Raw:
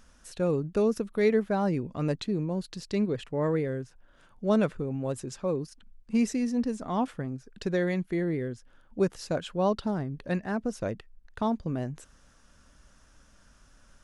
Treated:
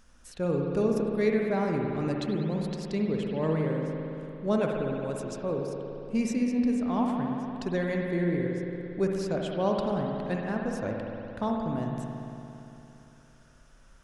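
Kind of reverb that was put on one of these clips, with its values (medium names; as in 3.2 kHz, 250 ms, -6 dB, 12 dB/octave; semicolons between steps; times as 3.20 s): spring tank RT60 3.1 s, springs 57 ms, chirp 45 ms, DRR 0 dB; trim -2.5 dB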